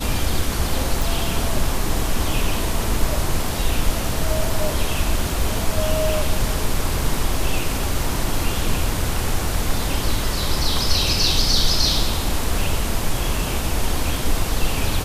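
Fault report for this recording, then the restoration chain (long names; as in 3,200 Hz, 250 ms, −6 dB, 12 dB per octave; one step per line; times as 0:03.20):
0:01.02: click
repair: click removal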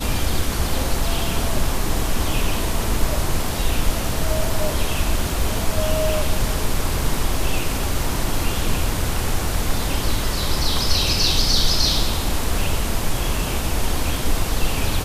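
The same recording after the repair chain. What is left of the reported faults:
none of them is left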